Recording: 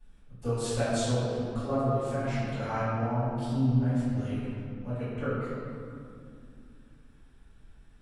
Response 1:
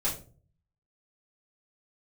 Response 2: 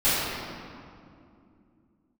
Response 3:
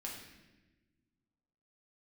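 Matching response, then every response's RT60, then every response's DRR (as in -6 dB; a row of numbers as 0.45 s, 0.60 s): 2; 0.40 s, 2.5 s, no single decay rate; -8.0 dB, -17.0 dB, -3.0 dB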